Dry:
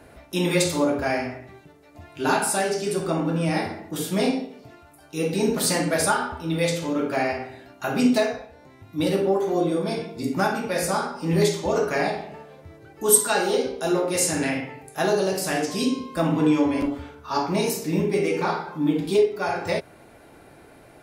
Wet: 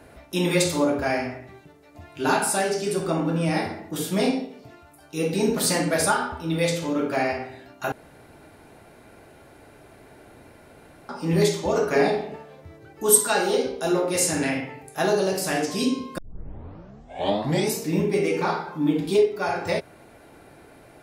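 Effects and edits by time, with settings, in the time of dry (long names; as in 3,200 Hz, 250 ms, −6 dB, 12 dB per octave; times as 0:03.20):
0:07.92–0:11.09: fill with room tone
0:11.92–0:12.36: hollow resonant body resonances 250/420/3,600 Hz, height 9 dB
0:16.18: tape start 1.61 s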